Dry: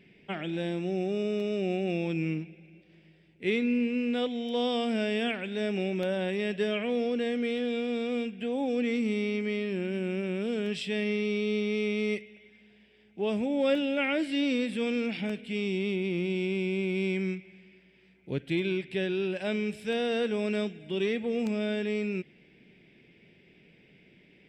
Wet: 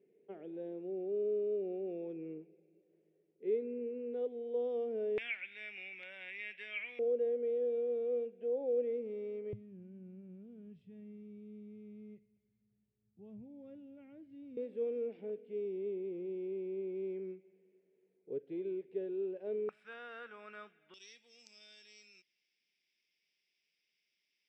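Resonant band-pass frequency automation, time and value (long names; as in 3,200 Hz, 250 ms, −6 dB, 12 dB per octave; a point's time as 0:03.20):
resonant band-pass, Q 6.5
440 Hz
from 0:05.18 2,200 Hz
from 0:06.99 490 Hz
from 0:09.53 110 Hz
from 0:14.57 440 Hz
from 0:19.69 1,300 Hz
from 0:20.94 5,500 Hz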